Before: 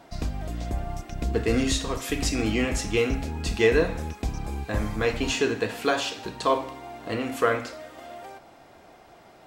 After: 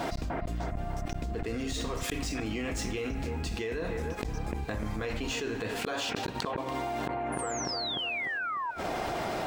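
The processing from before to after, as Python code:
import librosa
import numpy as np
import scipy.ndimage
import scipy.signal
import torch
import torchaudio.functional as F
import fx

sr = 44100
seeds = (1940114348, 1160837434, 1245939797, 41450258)

p1 = scipy.ndimage.median_filter(x, 3, mode='constant')
p2 = fx.spec_paint(p1, sr, seeds[0], shape='fall', start_s=7.32, length_s=1.39, low_hz=910.0, high_hz=10000.0, level_db=-26.0)
p3 = fx.gate_flip(p2, sr, shuts_db=-24.0, range_db=-42)
p4 = p3 + fx.echo_bbd(p3, sr, ms=299, stages=4096, feedback_pct=37, wet_db=-14.0, dry=0)
y = fx.env_flatten(p4, sr, amount_pct=100)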